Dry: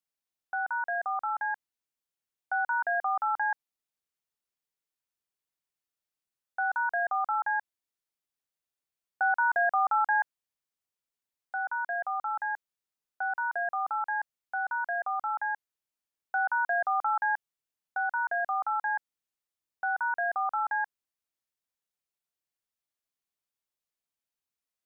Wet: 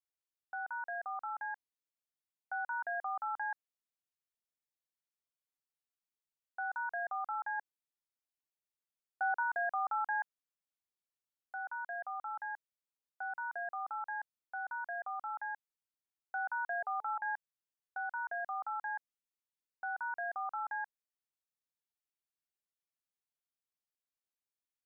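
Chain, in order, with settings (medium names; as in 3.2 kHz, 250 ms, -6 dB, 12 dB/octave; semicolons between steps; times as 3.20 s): 7.57–9.43 s: dynamic bell 460 Hz, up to +7 dB, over -45 dBFS, Q 1.1; 16.67–17.31 s: de-hum 431.5 Hz, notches 2; trim -9 dB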